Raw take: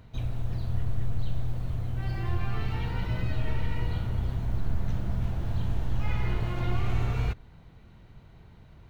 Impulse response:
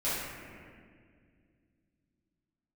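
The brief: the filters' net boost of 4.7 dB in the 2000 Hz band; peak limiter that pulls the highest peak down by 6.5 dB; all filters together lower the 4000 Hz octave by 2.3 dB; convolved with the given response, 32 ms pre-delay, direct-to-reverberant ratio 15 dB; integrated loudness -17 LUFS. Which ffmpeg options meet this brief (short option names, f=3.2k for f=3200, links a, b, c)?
-filter_complex "[0:a]equalizer=f=2k:t=o:g=7.5,equalizer=f=4k:t=o:g=-7.5,alimiter=limit=-21.5dB:level=0:latency=1,asplit=2[a][b];[1:a]atrim=start_sample=2205,adelay=32[c];[b][c]afir=irnorm=-1:irlink=0,volume=-24dB[d];[a][d]amix=inputs=2:normalize=0,volume=16.5dB"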